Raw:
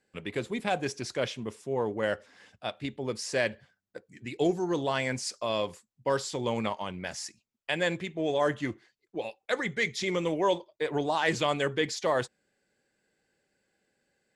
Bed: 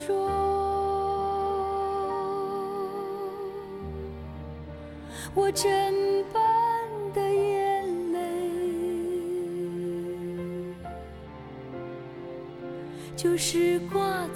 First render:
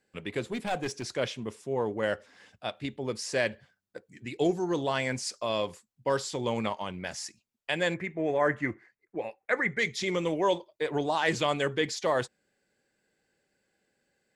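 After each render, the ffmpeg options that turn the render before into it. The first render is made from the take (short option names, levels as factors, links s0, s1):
-filter_complex "[0:a]asettb=1/sr,asplit=3[s0][s1][s2];[s0]atrim=end=0.514[s3];[s1]atrim=start=0.51:end=1.14,asetpts=PTS-STARTPTS,afade=t=in:d=0.004:c=qsin,afade=t=out:st=0.626:d=0.004:c=qsin,aeval=exprs='clip(val(0),-1,0.0376)':c=same[s4];[s2]atrim=start=1.136[s5];[s3][s4]acrossfade=d=0.004:c1=hsin:c2=qsin[s6];[s6][s5]acrossfade=d=0.004:c1=qsin:c2=hsin,asettb=1/sr,asplit=3[s7][s8][s9];[s7]atrim=end=7.944[s10];[s8]atrim=start=7.94:end=9.79,asetpts=PTS-STARTPTS,afade=t=in:d=0.004:c=qsin,afade=t=out:st=1.846:d=0.004:c=qsin,highshelf=f=2600:t=q:w=3:g=-8[s11];[s9]atrim=start=9.786[s12];[s10][s11]acrossfade=d=0.004:c1=hsin:c2=qsin[s13];[s13][s12]acrossfade=d=0.004:c1=qsin:c2=hsin"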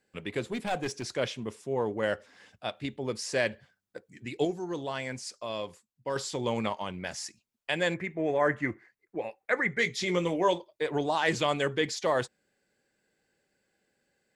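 -filter_complex "[0:a]asettb=1/sr,asplit=3[s0][s1][s2];[s0]atrim=end=9.764[s3];[s1]atrim=start=9.76:end=10.53,asetpts=PTS-STARTPTS,afade=t=in:d=0.004:c=qsin,afade=t=out:st=0.766:d=0.004:c=qsin,asplit=2[s4][s5];[s5]adelay=17,volume=0.398[s6];[s4][s6]amix=inputs=2:normalize=0,atrim=end_sample=33957[s7];[s2]atrim=start=10.526[s8];[s3][s7]acrossfade=d=0.004:c1=hsin:c2=qsin[s9];[s9][s8]acrossfade=d=0.004:c1=qsin:c2=hsin,asplit=3[s10][s11][s12];[s10]atrim=end=4.452[s13];[s11]atrim=start=4.448:end=6.162,asetpts=PTS-STARTPTS,volume=0.531[s14];[s12]atrim=start=6.158[s15];[s13][s14]acrossfade=d=0.004:c1=hsin:c2=hsin[s16];[s16][s15]acrossfade=d=0.004:c1=hsin:c2=hsin"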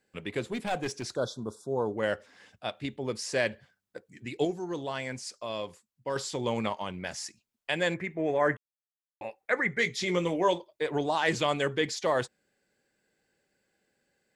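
-filter_complex "[0:a]asplit=3[s0][s1][s2];[s0]afade=t=out:st=1.14:d=0.02[s3];[s1]asuperstop=centerf=2300:order=20:qfactor=1.2,afade=t=in:st=1.14:d=0.02,afade=t=out:st=1.96:d=0.02[s4];[s2]afade=t=in:st=1.96:d=0.02[s5];[s3][s4][s5]amix=inputs=3:normalize=0,asplit=3[s6][s7][s8];[s6]atrim=end=8.57,asetpts=PTS-STARTPTS,afade=t=out:st=8.566:d=0.004:c=hsin[s9];[s7]atrim=start=8.57:end=9.21,asetpts=PTS-STARTPTS,volume=0[s10];[s8]atrim=start=9.21,asetpts=PTS-STARTPTS,afade=t=in:d=0.004:c=hsin[s11];[s9][s10][s11]concat=n=3:v=0:a=1"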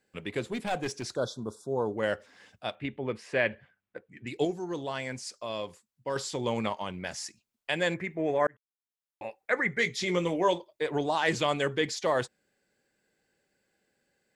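-filter_complex "[0:a]asettb=1/sr,asplit=3[s0][s1][s2];[s0]atrim=end=2.754[s3];[s1]atrim=start=2.75:end=4.27,asetpts=PTS-STARTPTS,afade=t=in:d=0.004:c=qsin,afade=t=out:st=1.516:d=0.004:c=qsin,highshelf=f=3700:t=q:w=1.5:g=-13.5[s4];[s2]atrim=start=4.266[s5];[s3][s4]acrossfade=d=0.004:c1=hsin:c2=qsin[s6];[s6][s5]acrossfade=d=0.004:c1=qsin:c2=hsin,asplit=2[s7][s8];[s7]atrim=end=8.47,asetpts=PTS-STARTPTS,afade=t=out:st=8.466:d=0.004:c=hsin[s9];[s8]atrim=start=8.47,asetpts=PTS-STARTPTS,afade=t=in:d=0.78[s10];[s9][s10]concat=n=2:v=0:a=1"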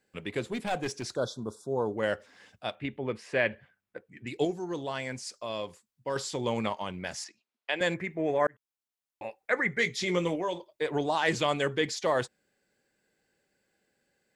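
-filter_complex "[0:a]asettb=1/sr,asplit=3[s0][s1][s2];[s0]atrim=end=7.244[s3];[s1]atrim=start=7.24:end=7.81,asetpts=PTS-STARTPTS,afade=t=in:d=0.004:c=qsin,afade=t=out:st=0.566:d=0.004:c=qsin,acrossover=split=260 5100:gain=0.0708 1 0.126[s4][s5][s6];[s4][s5][s6]amix=inputs=3:normalize=0[s7];[s2]atrim=start=7.806[s8];[s3][s7]acrossfade=d=0.004:c1=hsin:c2=qsin[s9];[s9][s8]acrossfade=d=0.004:c1=qsin:c2=hsin,asettb=1/sr,asplit=3[s10][s11][s12];[s10]atrim=end=10.354[s13];[s11]atrim=start=10.35:end=10.75,asetpts=PTS-STARTPTS,afade=t=in:d=0.004:c=qsin,afade=t=out:st=0.396:d=0.004:c=qsin,acompressor=threshold=0.0251:ratio=2:attack=3.2:release=140:knee=1:detection=peak[s14];[s12]atrim=start=10.746[s15];[s13][s14]acrossfade=d=0.004:c1=hsin:c2=qsin[s16];[s16][s15]acrossfade=d=0.004:c1=qsin:c2=hsin"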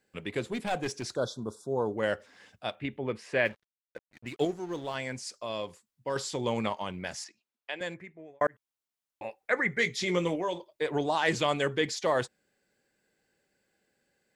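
-filter_complex "[0:a]asettb=1/sr,asplit=3[s0][s1][s2];[s0]atrim=end=3.454[s3];[s1]atrim=start=3.45:end=4.95,asetpts=PTS-STARTPTS,afade=t=in:d=0.004:c=qsin,afade=t=out:st=1.496:d=0.004:c=qsin,aeval=exprs='sgn(val(0))*max(abs(val(0))-0.00335,0)':c=same[s4];[s2]atrim=start=4.946[s5];[s3][s4]acrossfade=d=0.004:c1=hsin:c2=qsin[s6];[s6][s5]acrossfade=d=0.004:c1=qsin:c2=hsin,asplit=2[s7][s8];[s7]atrim=end=8.41,asetpts=PTS-STARTPTS,afade=t=out:st=7:d=1.41[s9];[s8]atrim=start=8.41,asetpts=PTS-STARTPTS,afade=t=in:d=0.004:c=hsin[s10];[s9][s10]concat=n=2:v=0:a=1"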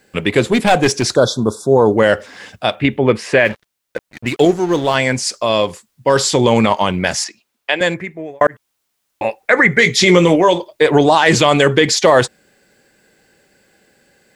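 -af "acontrast=67,alimiter=level_in=4.73:limit=0.891:release=50:level=0:latency=1"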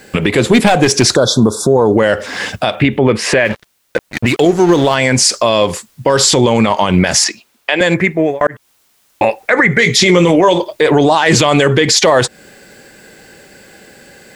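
-af "acompressor=threshold=0.126:ratio=6,alimiter=level_in=5.62:limit=0.891:release=50:level=0:latency=1"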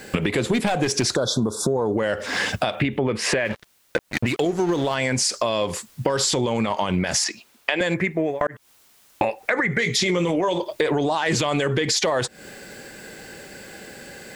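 -af "acompressor=threshold=0.1:ratio=5"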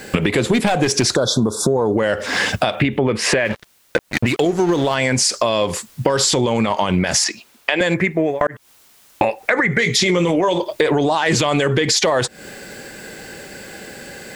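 -af "volume=1.78,alimiter=limit=0.891:level=0:latency=1"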